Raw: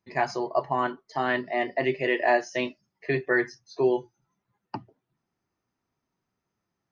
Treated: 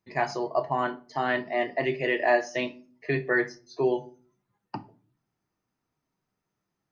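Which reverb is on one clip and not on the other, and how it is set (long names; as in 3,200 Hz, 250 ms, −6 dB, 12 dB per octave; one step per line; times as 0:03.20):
rectangular room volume 270 cubic metres, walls furnished, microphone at 0.51 metres
level −1 dB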